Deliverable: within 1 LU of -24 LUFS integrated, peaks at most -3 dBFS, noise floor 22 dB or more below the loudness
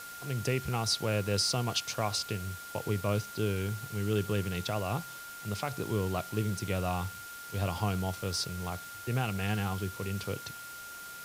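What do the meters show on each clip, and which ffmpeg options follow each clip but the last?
steady tone 1400 Hz; tone level -44 dBFS; noise floor -45 dBFS; noise floor target -55 dBFS; loudness -33.0 LUFS; peak -17.0 dBFS; loudness target -24.0 LUFS
-> -af "bandreject=f=1.4k:w=30"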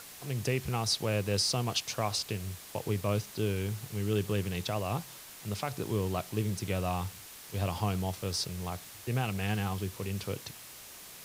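steady tone none; noise floor -49 dBFS; noise floor target -55 dBFS
-> -af "afftdn=nr=6:nf=-49"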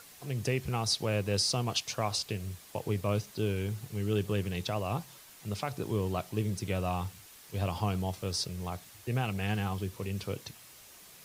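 noise floor -54 dBFS; noise floor target -56 dBFS
-> -af "afftdn=nr=6:nf=-54"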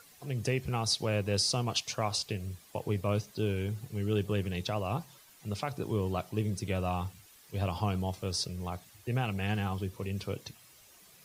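noise floor -58 dBFS; loudness -33.5 LUFS; peak -17.5 dBFS; loudness target -24.0 LUFS
-> -af "volume=9.5dB"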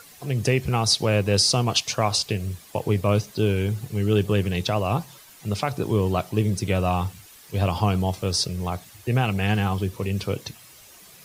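loudness -24.0 LUFS; peak -8.0 dBFS; noise floor -49 dBFS

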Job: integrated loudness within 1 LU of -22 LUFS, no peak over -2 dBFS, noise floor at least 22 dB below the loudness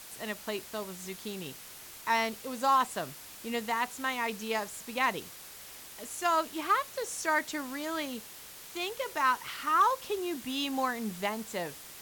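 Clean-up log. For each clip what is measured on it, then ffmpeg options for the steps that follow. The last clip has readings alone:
noise floor -48 dBFS; noise floor target -54 dBFS; loudness -32.0 LUFS; peak -16.5 dBFS; loudness target -22.0 LUFS
-> -af "afftdn=nr=6:nf=-48"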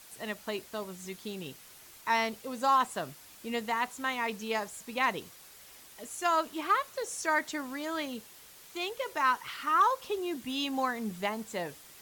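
noise floor -53 dBFS; noise floor target -54 dBFS
-> -af "afftdn=nr=6:nf=-53"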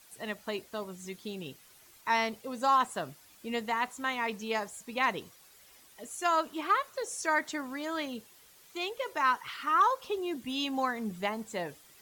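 noise floor -58 dBFS; loudness -32.0 LUFS; peak -16.5 dBFS; loudness target -22.0 LUFS
-> -af "volume=10dB"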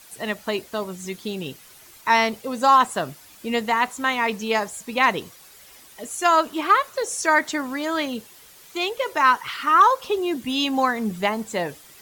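loudness -22.0 LUFS; peak -6.5 dBFS; noise floor -48 dBFS

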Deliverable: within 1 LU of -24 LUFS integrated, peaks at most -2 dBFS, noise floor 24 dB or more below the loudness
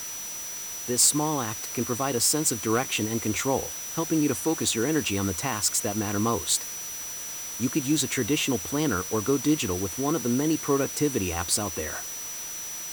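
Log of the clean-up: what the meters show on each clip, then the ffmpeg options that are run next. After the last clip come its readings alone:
steady tone 5900 Hz; tone level -35 dBFS; noise floor -36 dBFS; noise floor target -50 dBFS; loudness -26.0 LUFS; peak -10.5 dBFS; loudness target -24.0 LUFS
-> -af "bandreject=f=5.9k:w=30"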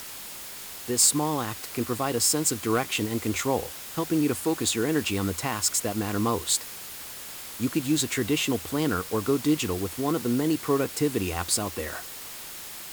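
steady tone none; noise floor -40 dBFS; noise floor target -50 dBFS
-> -af "afftdn=nr=10:nf=-40"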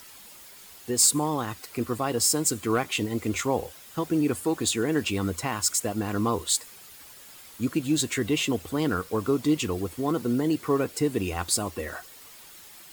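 noise floor -48 dBFS; noise floor target -50 dBFS
-> -af "afftdn=nr=6:nf=-48"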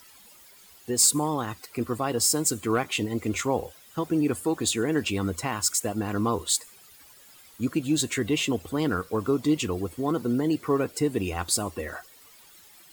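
noise floor -53 dBFS; loudness -26.5 LUFS; peak -10.5 dBFS; loudness target -24.0 LUFS
-> -af "volume=2.5dB"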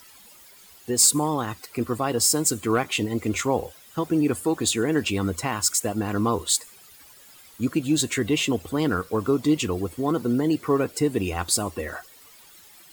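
loudness -24.0 LUFS; peak -8.0 dBFS; noise floor -50 dBFS

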